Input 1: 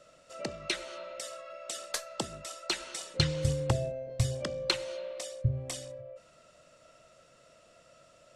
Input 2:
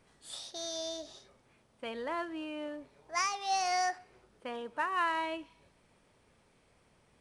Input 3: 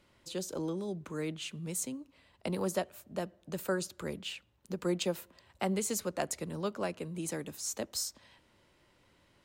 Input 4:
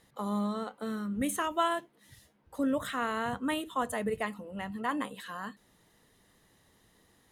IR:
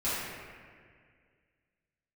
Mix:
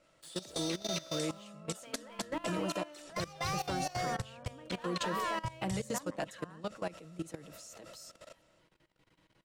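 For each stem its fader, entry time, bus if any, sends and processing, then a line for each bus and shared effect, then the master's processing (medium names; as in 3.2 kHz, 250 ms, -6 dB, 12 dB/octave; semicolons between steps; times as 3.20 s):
-6.5 dB, 0.00 s, bus A, no send, echo send -15.5 dB, level rider gain up to 15 dB
+2.0 dB, 0.00 s, bus A, no send, echo send -8.5 dB, bass shelf 420 Hz -7.5 dB; waveshaping leveller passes 3; compression 2:1, threshold -29 dBFS, peak gain reduction 3.5 dB
-1.5 dB, 0.00 s, no bus, no send, no echo send, treble shelf 8.5 kHz -6.5 dB; comb 6.3 ms, depth 57%
-3.5 dB, 1.10 s, bus A, no send, no echo send, low-pass that closes with the level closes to 1.8 kHz, closed at -29 dBFS; level rider gain up to 6 dB
bus A: 0.0 dB, compression 5:1, threshold -36 dBFS, peak gain reduction 18.5 dB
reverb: none
echo: delay 262 ms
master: level held to a coarse grid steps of 17 dB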